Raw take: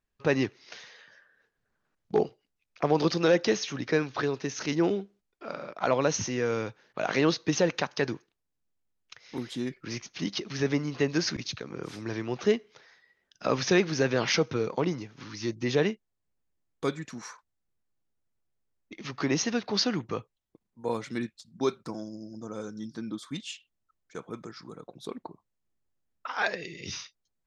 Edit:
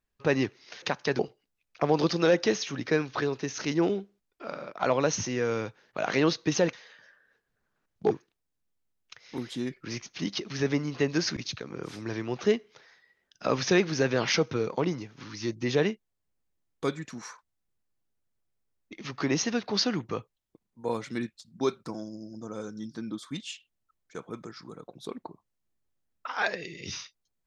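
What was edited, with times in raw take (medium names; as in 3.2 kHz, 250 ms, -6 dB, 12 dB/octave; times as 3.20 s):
0.82–2.20 s: swap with 7.74–8.11 s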